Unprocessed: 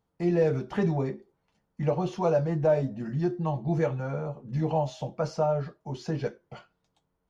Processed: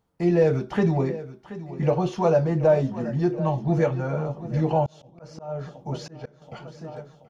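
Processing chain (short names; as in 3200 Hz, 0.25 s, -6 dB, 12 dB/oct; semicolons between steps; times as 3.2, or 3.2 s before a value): feedback echo 0.729 s, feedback 56%, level -15 dB; 4.86–6.42 auto swell 0.438 s; gain +4.5 dB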